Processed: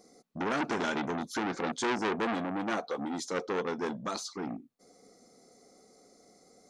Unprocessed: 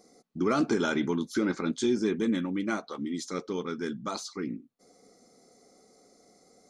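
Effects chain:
0:01.54–0:04.07: hollow resonant body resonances 510/720 Hz, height 10 dB, ringing for 25 ms
saturating transformer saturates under 1,900 Hz

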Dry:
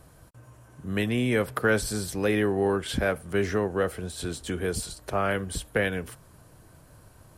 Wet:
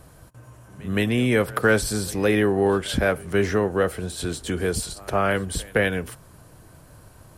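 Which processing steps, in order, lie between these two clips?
echo ahead of the sound 168 ms −23 dB
level +4.5 dB

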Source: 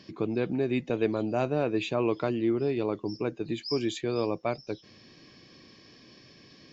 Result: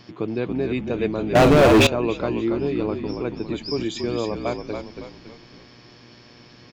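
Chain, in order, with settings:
echo with shifted repeats 279 ms, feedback 43%, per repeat −46 Hz, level −6 dB
0:01.35–0:01.87: leveller curve on the samples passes 5
hum with harmonics 120 Hz, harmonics 30, −56 dBFS −4 dB per octave
level +3 dB

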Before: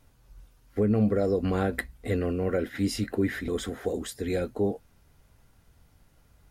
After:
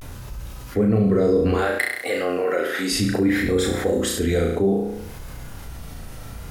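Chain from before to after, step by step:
0:01.53–0:02.91: high-pass filter 570 Hz 12 dB per octave
on a send: flutter between parallel walls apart 5.9 metres, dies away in 0.53 s
on the sum: pitch vibrato 0.62 Hz 89 cents
envelope flattener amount 50%
level +3 dB

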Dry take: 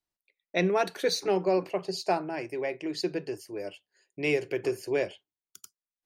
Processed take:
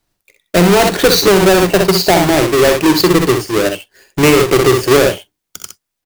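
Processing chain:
each half-wave held at its own peak
low-shelf EQ 220 Hz +6.5 dB
ambience of single reflections 46 ms −15 dB, 63 ms −7 dB
boost into a limiter +18 dB
level −1 dB

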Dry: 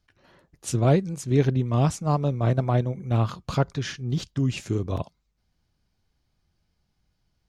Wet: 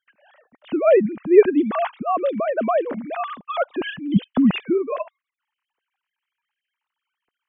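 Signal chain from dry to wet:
three sine waves on the formant tracks
level +4 dB

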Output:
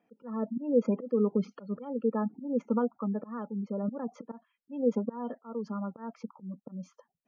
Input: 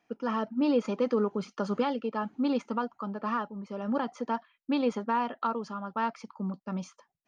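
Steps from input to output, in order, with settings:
volume swells 297 ms
gate on every frequency bin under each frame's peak −20 dB strong
hollow resonant body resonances 220/470 Hz, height 13 dB, ringing for 20 ms
level −7 dB

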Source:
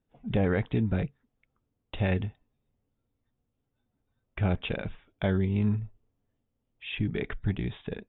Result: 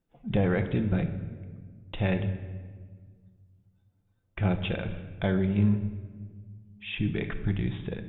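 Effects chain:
rectangular room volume 1,900 cubic metres, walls mixed, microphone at 0.8 metres

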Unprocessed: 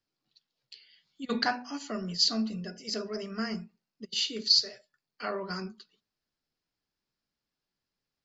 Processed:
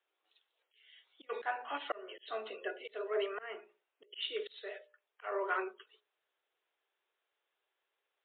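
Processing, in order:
Butterworth high-pass 380 Hz 48 dB per octave
mains-hum notches 60/120/180/240/300/360/420/480/540/600 Hz
volume swells 332 ms
level +7 dB
MP3 48 kbit/s 8,000 Hz

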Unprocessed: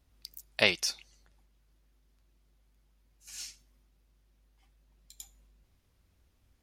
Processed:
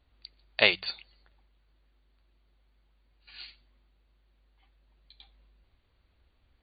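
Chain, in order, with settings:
linear-phase brick-wall low-pass 4,700 Hz
parametric band 160 Hz −6.5 dB 2 octaves
hum removal 46.68 Hz, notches 4
level +3.5 dB

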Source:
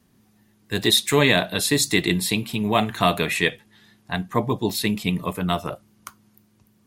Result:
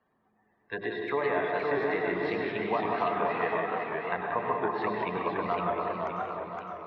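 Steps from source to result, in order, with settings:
low-pass filter 5,300 Hz 24 dB per octave
mains-hum notches 50/100/150/200/250/300/350/400 Hz
gate on every frequency bin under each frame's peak −25 dB strong
three-way crossover with the lows and the highs turned down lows −19 dB, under 470 Hz, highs −18 dB, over 2,000 Hz
downward compressor, threshold −26 dBFS, peak gain reduction 9.5 dB
treble cut that deepens with the level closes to 1,500 Hz, closed at −31 dBFS
bucket-brigade delay 183 ms, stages 4,096, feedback 60%, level −6 dB
dense smooth reverb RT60 0.81 s, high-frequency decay 0.95×, pre-delay 85 ms, DRR 3 dB
feedback echo with a swinging delay time 515 ms, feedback 47%, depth 150 cents, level −4 dB

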